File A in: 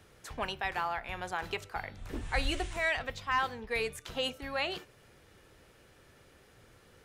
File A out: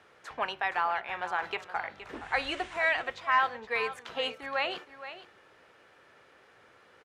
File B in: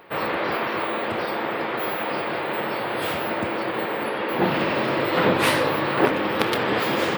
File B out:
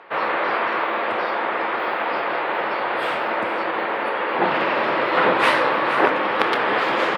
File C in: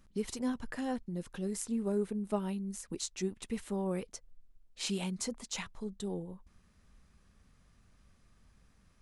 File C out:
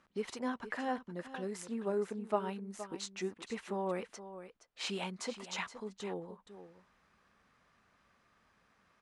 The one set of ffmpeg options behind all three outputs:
-af "bandpass=frequency=1200:width_type=q:width=0.68:csg=0,aecho=1:1:470:0.237,volume=5.5dB"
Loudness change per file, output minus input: +3.5, +2.5, −2.5 LU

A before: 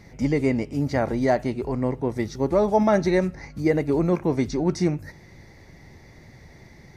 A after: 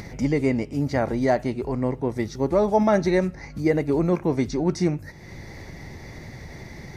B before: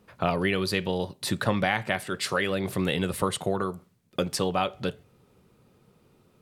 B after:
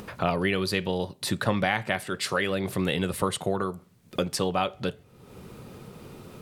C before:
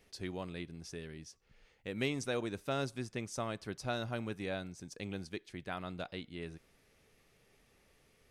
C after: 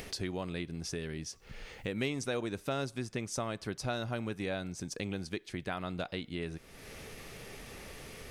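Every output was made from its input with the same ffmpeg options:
-af "acompressor=mode=upward:threshold=-29dB:ratio=2.5"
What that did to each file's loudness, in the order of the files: 0.0, 0.0, +2.0 LU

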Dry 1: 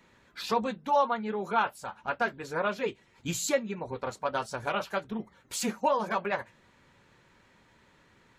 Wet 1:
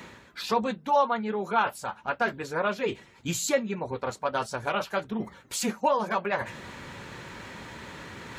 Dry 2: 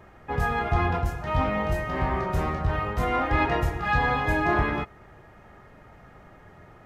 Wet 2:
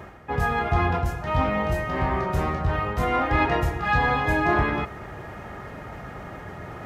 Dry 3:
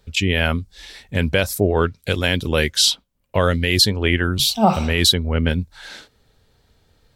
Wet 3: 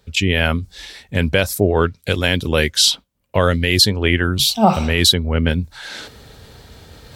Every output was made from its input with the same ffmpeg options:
-af "highpass=45,areverse,acompressor=mode=upward:threshold=-28dB:ratio=2.5,areverse,volume=2dB"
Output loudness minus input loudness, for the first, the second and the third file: +2.5, +2.0, +2.0 LU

